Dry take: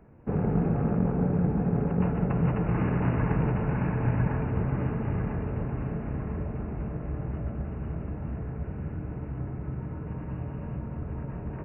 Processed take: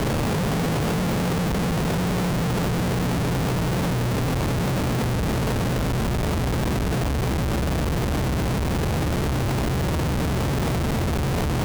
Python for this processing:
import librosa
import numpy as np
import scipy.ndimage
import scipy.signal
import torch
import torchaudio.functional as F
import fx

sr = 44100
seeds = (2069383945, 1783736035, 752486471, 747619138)

y = fx.delta_mod(x, sr, bps=16000, step_db=-26.0)
y = scipy.signal.sosfilt(scipy.signal.butter(4, 1000.0, 'lowpass', fs=sr, output='sos'), y)
y = fx.echo_feedback(y, sr, ms=867, feedback_pct=51, wet_db=-7.5)
y = fx.schmitt(y, sr, flips_db=-36.0)
y = F.gain(torch.from_numpy(y), 4.5).numpy()